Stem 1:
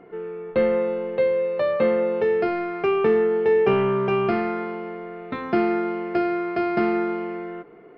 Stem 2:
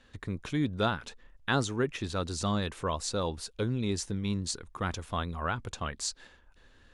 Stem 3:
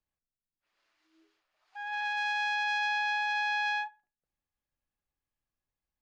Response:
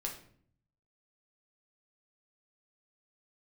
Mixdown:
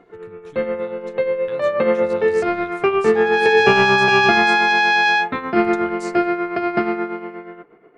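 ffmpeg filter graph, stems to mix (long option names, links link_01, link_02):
-filter_complex "[0:a]equalizer=frequency=1500:width_type=o:width=2.1:gain=4,tremolo=f=8.4:d=0.6,volume=-2dB[link_01];[1:a]acompressor=threshold=-36dB:ratio=6,volume=-10.5dB,asplit=3[link_02][link_03][link_04];[link_02]atrim=end=4.76,asetpts=PTS-STARTPTS,afade=type=out:start_time=4.756:duration=0.004:curve=hsin[link_05];[link_03]atrim=start=4.76:end=5.57,asetpts=PTS-STARTPTS,volume=0[link_06];[link_04]atrim=start=5.57,asetpts=PTS-STARTPTS,afade=type=in:duration=0.004:curve=hsin[link_07];[link_05][link_06][link_07]concat=n=3:v=0:a=1,asplit=2[link_08][link_09];[link_09]volume=-16dB[link_10];[2:a]acontrast=88,adelay=1400,volume=0.5dB[link_11];[3:a]atrim=start_sample=2205[link_12];[link_10][link_12]afir=irnorm=-1:irlink=0[link_13];[link_01][link_08][link_11][link_13]amix=inputs=4:normalize=0,dynaudnorm=framelen=230:gausssize=13:maxgain=11.5dB"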